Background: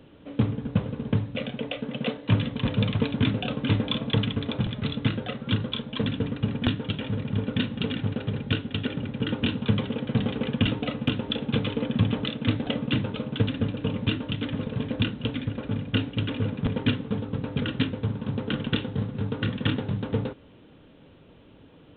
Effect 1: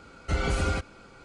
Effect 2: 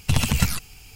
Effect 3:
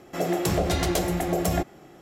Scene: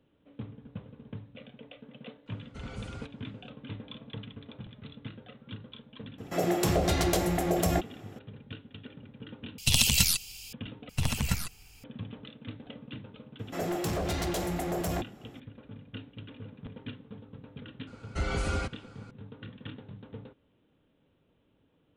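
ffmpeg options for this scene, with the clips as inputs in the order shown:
-filter_complex "[1:a]asplit=2[a][b];[3:a]asplit=2[c][d];[2:a]asplit=2[e][f];[0:a]volume=-17.5dB[g];[e]highshelf=f=2.3k:t=q:w=1.5:g=12[h];[f]acrusher=bits=10:mix=0:aa=0.000001[i];[d]asoftclip=type=hard:threshold=-22.5dB[j];[g]asplit=3[k][l][m];[k]atrim=end=9.584[n];[h]atrim=end=0.95,asetpts=PTS-STARTPTS,volume=-8.5dB[o];[l]atrim=start=10.526:end=10.894[p];[i]atrim=end=0.95,asetpts=PTS-STARTPTS,volume=-8.5dB[q];[m]atrim=start=11.836[r];[a]atrim=end=1.24,asetpts=PTS-STARTPTS,volume=-17.5dB,afade=t=in:d=0.004:c=hsin,afade=t=out:st=1.236:d=0.004:c=hsin,adelay=2260[s];[c]atrim=end=2.01,asetpts=PTS-STARTPTS,volume=-2dB,afade=t=in:d=0.004:c=hsin,afade=t=out:st=2.006:d=0.004:c=hsin,adelay=272538S[t];[j]atrim=end=2.01,asetpts=PTS-STARTPTS,volume=-5dB,afade=t=in:d=0.004:c=hsin,afade=t=out:st=2.006:d=0.004:c=hsin,adelay=13390[u];[b]atrim=end=1.24,asetpts=PTS-STARTPTS,volume=-4dB,afade=t=in:d=0.004:c=hsin,afade=t=out:st=1.236:d=0.004:c=hsin,adelay=17870[v];[n][o]acrossfade=d=0.004:c1=hsin:c2=hsin[w];[w][p]acrossfade=d=0.004:c1=hsin:c2=hsin[x];[x][q]acrossfade=d=0.004:c1=hsin:c2=hsin[y];[y][r]acrossfade=d=0.004:c1=hsin:c2=hsin[z];[z][s][t][u][v]amix=inputs=5:normalize=0"

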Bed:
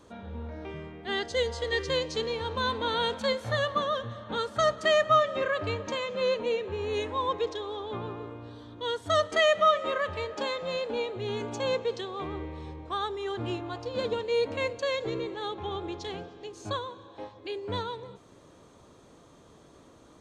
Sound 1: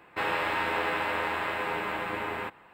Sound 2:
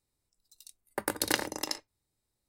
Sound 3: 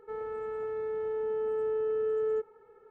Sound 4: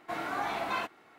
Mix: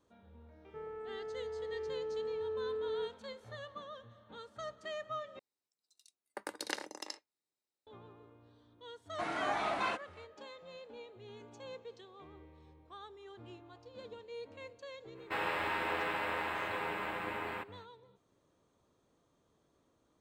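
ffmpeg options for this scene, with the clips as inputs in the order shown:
-filter_complex "[0:a]volume=-19dB[a];[2:a]highpass=310,lowpass=7.5k[b];[4:a]aresample=22050,aresample=44100[c];[a]asplit=2[d][e];[d]atrim=end=5.394[f];[b]atrim=end=2.48,asetpts=PTS-STARTPTS,volume=-9dB[g];[e]atrim=start=7.866[h];[3:a]atrim=end=2.9,asetpts=PTS-STARTPTS,volume=-8dB,afade=t=in:d=0.004:c=hsin,afade=t=out:st=2.896:d=0.004:c=hsin,adelay=660[i];[c]atrim=end=1.18,asetpts=PTS-STARTPTS,volume=-2dB,afade=t=in:d=0.05,afade=t=out:st=1.13:d=0.05,adelay=9100[j];[1:a]atrim=end=2.73,asetpts=PTS-STARTPTS,volume=-6.5dB,afade=t=in:d=0.05,afade=t=out:st=2.68:d=0.05,adelay=15140[k];[f][g]acrossfade=d=0.004:c1=hsin:c2=hsin[l];[l][h]acrossfade=d=0.004:c1=hsin:c2=hsin[m];[m][i][j][k]amix=inputs=4:normalize=0"

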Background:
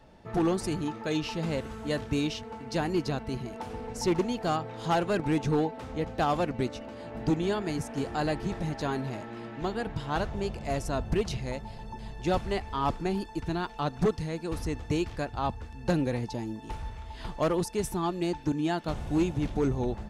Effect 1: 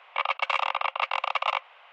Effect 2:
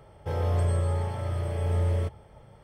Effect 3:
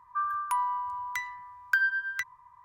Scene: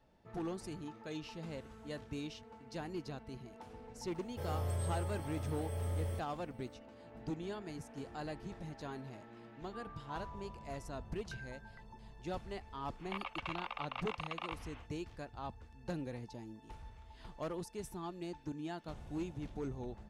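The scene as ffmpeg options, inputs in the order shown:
-filter_complex "[0:a]volume=-14dB[a];[2:a]aemphasis=mode=production:type=50fm[b];[3:a]lowpass=1k[c];[1:a]acompressor=threshold=-35dB:ratio=6:attack=3.2:release=140:knee=1:detection=peak[d];[b]atrim=end=2.63,asetpts=PTS-STARTPTS,volume=-11.5dB,afade=t=in:d=0.004:c=hsin,afade=t=out:st=2.626:d=0.004:c=hsin,adelay=4110[e];[c]atrim=end=2.64,asetpts=PTS-STARTPTS,volume=-17.5dB,afade=t=in:d=0.004:c=hsin,afade=t=out:st=2.636:d=0.004:c=hsin,adelay=9580[f];[d]atrim=end=1.92,asetpts=PTS-STARTPTS,volume=-3.5dB,afade=t=in:d=0.1,afade=t=out:st=1.82:d=0.1,adelay=12960[g];[a][e][f][g]amix=inputs=4:normalize=0"

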